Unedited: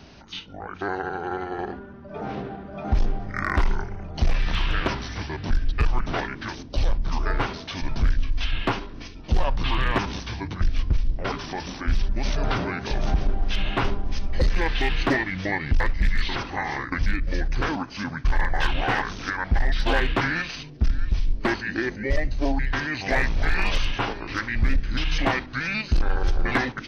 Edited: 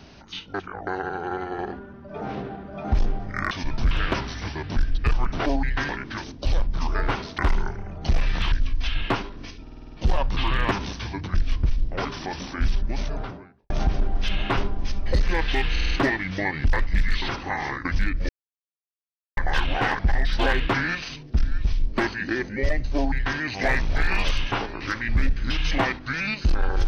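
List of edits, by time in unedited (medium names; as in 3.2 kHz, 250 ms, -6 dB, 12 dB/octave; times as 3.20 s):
0.54–0.87 s: reverse
3.51–4.65 s: swap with 7.69–8.09 s
9.19 s: stutter 0.05 s, 7 plays
11.95–12.97 s: studio fade out
14.98 s: stutter 0.05 s, 5 plays
17.36–18.44 s: mute
19.06–19.46 s: delete
22.42–22.85 s: copy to 6.20 s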